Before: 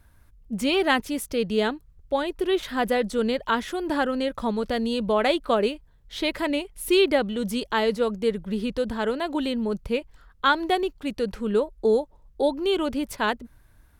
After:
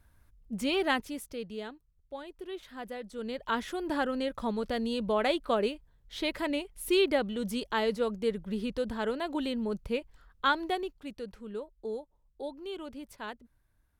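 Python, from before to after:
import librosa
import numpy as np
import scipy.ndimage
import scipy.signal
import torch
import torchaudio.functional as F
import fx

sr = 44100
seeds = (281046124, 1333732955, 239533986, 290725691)

y = fx.gain(x, sr, db=fx.line((0.9, -6.5), (1.65, -17.0), (3.07, -17.0), (3.57, -6.0), (10.48, -6.0), (11.46, -16.0)))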